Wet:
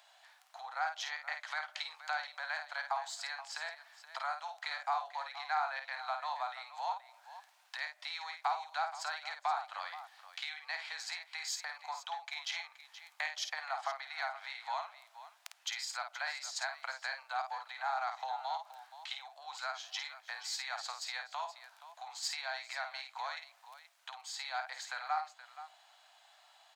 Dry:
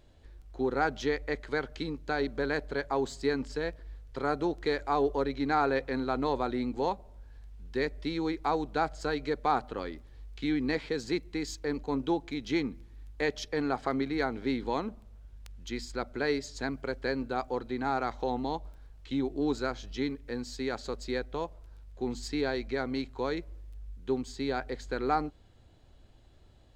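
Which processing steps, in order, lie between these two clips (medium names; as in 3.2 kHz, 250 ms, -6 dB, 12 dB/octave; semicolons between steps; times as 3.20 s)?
compression 5:1, threshold -38 dBFS, peak gain reduction 14.5 dB; steep high-pass 680 Hz 72 dB/octave; on a send: multi-tap echo 52/475 ms -7/-14 dB; on the sum: trim +7.5 dB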